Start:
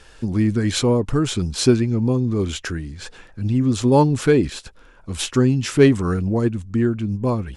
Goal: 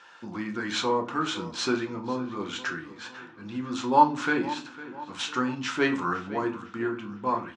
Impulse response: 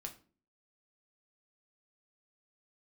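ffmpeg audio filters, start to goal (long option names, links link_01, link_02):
-filter_complex "[0:a]highpass=390,equalizer=frequency=410:width_type=q:width=4:gain=-8,equalizer=frequency=590:width_type=q:width=4:gain=-4,equalizer=frequency=970:width_type=q:width=4:gain=9,equalizer=frequency=1400:width_type=q:width=4:gain=7,equalizer=frequency=4800:width_type=q:width=4:gain=-5,lowpass=frequency=6000:width=0.5412,lowpass=frequency=6000:width=1.3066,asplit=2[link_01][link_02];[link_02]adelay=504,lowpass=frequency=3800:poles=1,volume=-16dB,asplit=2[link_03][link_04];[link_04]adelay=504,lowpass=frequency=3800:poles=1,volume=0.53,asplit=2[link_05][link_06];[link_06]adelay=504,lowpass=frequency=3800:poles=1,volume=0.53,asplit=2[link_07][link_08];[link_08]adelay=504,lowpass=frequency=3800:poles=1,volume=0.53,asplit=2[link_09][link_10];[link_10]adelay=504,lowpass=frequency=3800:poles=1,volume=0.53[link_11];[link_01][link_03][link_05][link_07][link_09][link_11]amix=inputs=6:normalize=0[link_12];[1:a]atrim=start_sample=2205[link_13];[link_12][link_13]afir=irnorm=-1:irlink=0"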